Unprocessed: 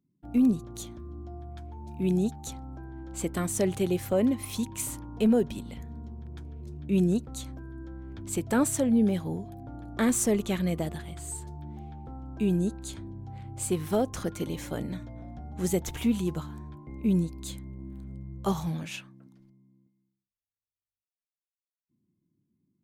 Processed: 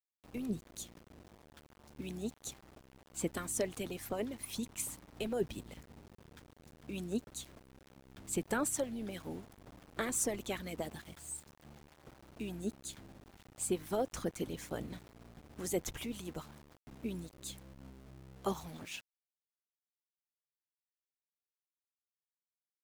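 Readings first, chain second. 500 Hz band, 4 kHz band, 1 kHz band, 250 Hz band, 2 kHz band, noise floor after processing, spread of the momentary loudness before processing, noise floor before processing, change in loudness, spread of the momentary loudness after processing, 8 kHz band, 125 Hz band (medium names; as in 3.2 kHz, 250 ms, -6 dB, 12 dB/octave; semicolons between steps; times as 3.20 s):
-9.0 dB, -5.0 dB, -7.0 dB, -14.5 dB, -5.0 dB, under -85 dBFS, 18 LU, under -85 dBFS, -11.0 dB, 22 LU, -5.0 dB, -15.0 dB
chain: harmonic-percussive split harmonic -16 dB; small samples zeroed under -48.5 dBFS; trim -3.5 dB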